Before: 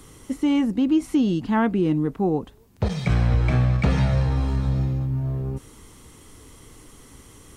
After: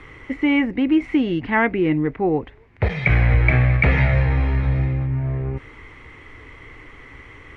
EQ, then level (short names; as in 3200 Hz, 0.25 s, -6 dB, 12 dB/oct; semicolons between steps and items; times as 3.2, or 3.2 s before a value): dynamic EQ 1200 Hz, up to -5 dB, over -44 dBFS, Q 1.5; synth low-pass 2100 Hz, resonance Q 5; bell 200 Hz -9.5 dB 0.64 oct; +4.5 dB